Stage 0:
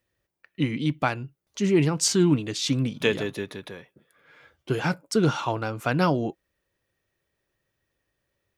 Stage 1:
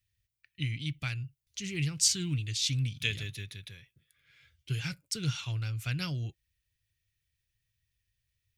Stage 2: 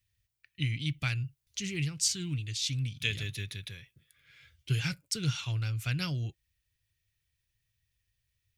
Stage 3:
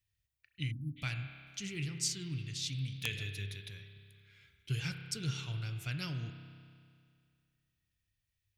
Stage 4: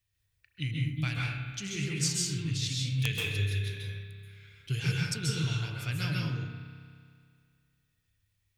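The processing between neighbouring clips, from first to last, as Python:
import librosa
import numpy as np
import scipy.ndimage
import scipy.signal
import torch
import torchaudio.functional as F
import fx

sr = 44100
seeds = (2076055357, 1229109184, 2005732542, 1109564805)

y1 = fx.curve_eq(x, sr, hz=(110.0, 220.0, 900.0, 2300.0, 4200.0), db=(0, -22, -30, -6, -4))
y1 = y1 * 10.0 ** (2.5 / 20.0)
y2 = fx.rider(y1, sr, range_db=4, speed_s=0.5)
y3 = fx.rev_spring(y2, sr, rt60_s=2.2, pass_ms=(30,), chirp_ms=20, drr_db=6.0)
y3 = fx.spec_erase(y3, sr, start_s=0.71, length_s=0.26, low_hz=380.0, high_hz=10000.0)
y3 = (np.mod(10.0 ** (14.0 / 20.0) * y3 + 1.0, 2.0) - 1.0) / 10.0 ** (14.0 / 20.0)
y3 = y3 * 10.0 ** (-6.0 / 20.0)
y4 = fx.rev_plate(y3, sr, seeds[0], rt60_s=0.68, hf_ratio=0.55, predelay_ms=120, drr_db=-2.5)
y4 = y4 * 10.0 ** (3.0 / 20.0)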